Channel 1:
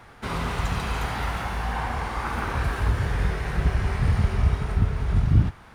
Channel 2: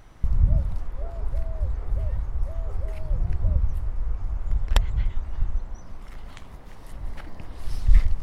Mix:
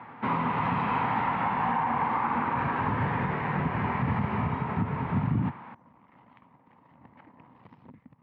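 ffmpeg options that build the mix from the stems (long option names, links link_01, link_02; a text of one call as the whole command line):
ffmpeg -i stem1.wav -i stem2.wav -filter_complex "[0:a]volume=3dB[link_01];[1:a]acompressor=threshold=-25dB:ratio=16,aeval=exprs='0.075*(cos(1*acos(clip(val(0)/0.075,-1,1)))-cos(1*PI/2))+0.0168*(cos(5*acos(clip(val(0)/0.075,-1,1)))-cos(5*PI/2))+0.015*(cos(7*acos(clip(val(0)/0.075,-1,1)))-cos(7*PI/2))':channel_layout=same,volume=-12dB[link_02];[link_01][link_02]amix=inputs=2:normalize=0,highpass=frequency=130:width=0.5412,highpass=frequency=130:width=1.3066,equalizer=frequency=250:width_type=q:width=4:gain=6,equalizer=frequency=390:width_type=q:width=4:gain=-6,equalizer=frequency=640:width_type=q:width=4:gain=-4,equalizer=frequency=950:width_type=q:width=4:gain=9,equalizer=frequency=1500:width_type=q:width=4:gain=-5,lowpass=frequency=2400:width=0.5412,lowpass=frequency=2400:width=1.3066,alimiter=limit=-18dB:level=0:latency=1:release=84" out.wav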